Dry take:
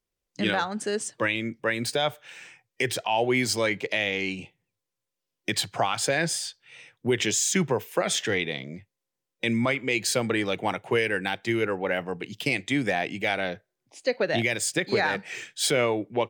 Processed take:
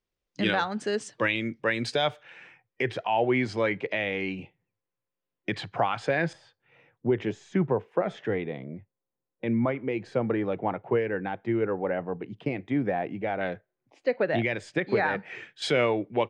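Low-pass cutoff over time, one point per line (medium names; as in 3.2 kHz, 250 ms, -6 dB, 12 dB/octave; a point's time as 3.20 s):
4.8 kHz
from 2.23 s 2.1 kHz
from 6.33 s 1.1 kHz
from 13.41 s 2 kHz
from 15.62 s 3.5 kHz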